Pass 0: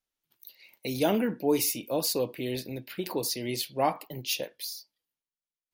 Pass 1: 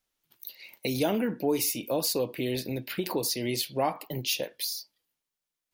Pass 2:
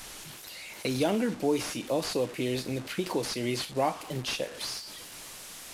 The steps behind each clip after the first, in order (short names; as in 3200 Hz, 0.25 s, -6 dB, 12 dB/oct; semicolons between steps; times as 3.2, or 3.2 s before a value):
compressor 2:1, threshold -37 dBFS, peak gain reduction 9.5 dB; gain +7 dB
delta modulation 64 kbps, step -37 dBFS